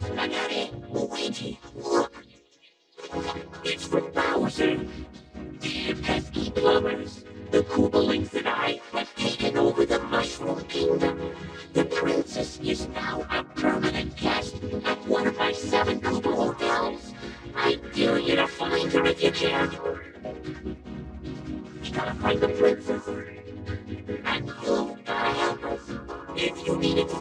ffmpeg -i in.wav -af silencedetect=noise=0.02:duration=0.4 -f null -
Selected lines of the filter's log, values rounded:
silence_start: 2.19
silence_end: 3.00 | silence_duration: 0.81